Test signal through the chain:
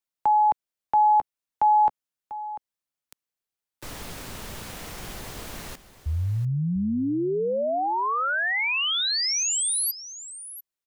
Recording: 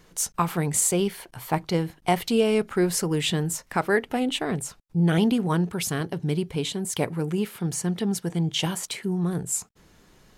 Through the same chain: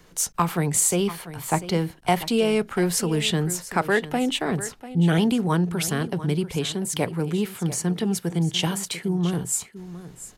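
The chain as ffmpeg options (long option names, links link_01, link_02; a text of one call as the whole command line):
ffmpeg -i in.wav -filter_complex "[0:a]acrossover=split=230|480|5400[link_01][link_02][link_03][link_04];[link_02]alimiter=level_in=1.5dB:limit=-24dB:level=0:latency=1,volume=-1.5dB[link_05];[link_01][link_05][link_03][link_04]amix=inputs=4:normalize=0,asoftclip=type=hard:threshold=-11dB,aecho=1:1:694:0.188,volume=2dB" out.wav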